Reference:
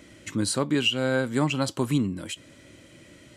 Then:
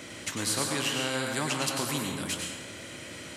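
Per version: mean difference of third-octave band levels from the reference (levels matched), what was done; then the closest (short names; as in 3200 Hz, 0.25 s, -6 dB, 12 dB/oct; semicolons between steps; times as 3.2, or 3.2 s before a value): 13.0 dB: HPF 92 Hz; flange 0.68 Hz, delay 7.3 ms, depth 8.6 ms, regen -59%; plate-style reverb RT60 0.87 s, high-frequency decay 0.6×, pre-delay 85 ms, DRR 3 dB; spectral compressor 2:1; gain -1.5 dB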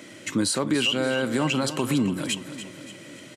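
6.0 dB: HPF 100 Hz 24 dB/oct; low shelf 130 Hz -11 dB; limiter -22.5 dBFS, peak gain reduction 10.5 dB; feedback echo 0.287 s, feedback 50%, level -12 dB; gain +7.5 dB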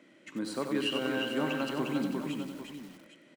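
8.0 dB: HPF 180 Hz 24 dB/oct; tone controls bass -1 dB, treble -12 dB; tapped delay 41/72/353/453/602/802 ms -17.5/-13/-4/-19.5/-19.5/-12 dB; lo-fi delay 93 ms, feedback 55%, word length 7-bit, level -6 dB; gain -7.5 dB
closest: second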